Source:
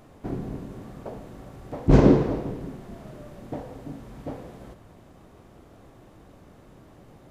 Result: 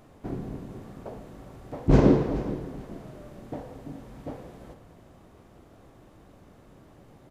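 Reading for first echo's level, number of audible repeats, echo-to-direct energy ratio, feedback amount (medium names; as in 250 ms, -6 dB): -15.5 dB, 2, -15.0 dB, 28%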